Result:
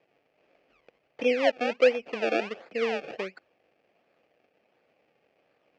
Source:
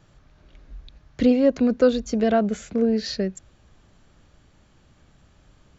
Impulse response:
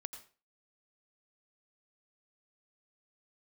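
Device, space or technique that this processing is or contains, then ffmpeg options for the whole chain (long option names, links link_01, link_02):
circuit-bent sampling toy: -af "acrusher=samples=30:mix=1:aa=0.000001:lfo=1:lforange=30:lforate=1.4,highpass=450,equalizer=frequency=490:width_type=q:width=4:gain=6,equalizer=frequency=700:width_type=q:width=4:gain=4,equalizer=frequency=990:width_type=q:width=4:gain=-9,equalizer=frequency=1400:width_type=q:width=4:gain=-5,equalizer=frequency=2500:width_type=q:width=4:gain=7,equalizer=frequency=3800:width_type=q:width=4:gain=-9,lowpass=frequency=4400:width=0.5412,lowpass=frequency=4400:width=1.3066,volume=-5dB"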